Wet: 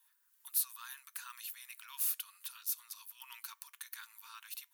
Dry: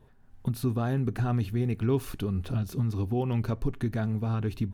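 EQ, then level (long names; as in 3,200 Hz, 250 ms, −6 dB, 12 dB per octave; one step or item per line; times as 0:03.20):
linear-phase brick-wall high-pass 880 Hz
first difference
high-shelf EQ 11,000 Hz +11.5 dB
+4.5 dB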